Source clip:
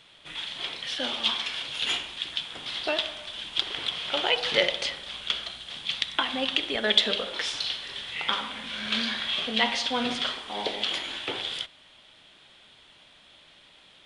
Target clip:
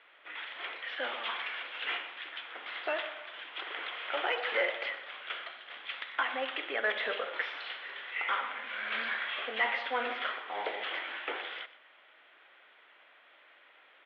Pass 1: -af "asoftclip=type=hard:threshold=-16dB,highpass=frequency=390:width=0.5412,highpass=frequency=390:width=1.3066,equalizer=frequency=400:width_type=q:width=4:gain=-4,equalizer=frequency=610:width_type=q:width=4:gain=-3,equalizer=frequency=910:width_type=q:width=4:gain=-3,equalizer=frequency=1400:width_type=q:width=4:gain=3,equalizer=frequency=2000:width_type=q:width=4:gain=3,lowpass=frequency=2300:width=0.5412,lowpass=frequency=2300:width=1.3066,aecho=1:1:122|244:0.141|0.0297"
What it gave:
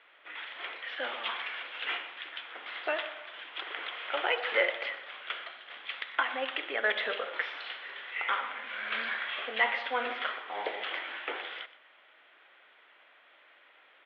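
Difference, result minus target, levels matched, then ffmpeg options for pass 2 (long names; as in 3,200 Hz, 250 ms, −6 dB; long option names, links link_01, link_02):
hard clipping: distortion −6 dB
-af "asoftclip=type=hard:threshold=-22.5dB,highpass=frequency=390:width=0.5412,highpass=frequency=390:width=1.3066,equalizer=frequency=400:width_type=q:width=4:gain=-4,equalizer=frequency=610:width_type=q:width=4:gain=-3,equalizer=frequency=910:width_type=q:width=4:gain=-3,equalizer=frequency=1400:width_type=q:width=4:gain=3,equalizer=frequency=2000:width_type=q:width=4:gain=3,lowpass=frequency=2300:width=0.5412,lowpass=frequency=2300:width=1.3066,aecho=1:1:122|244:0.141|0.0297"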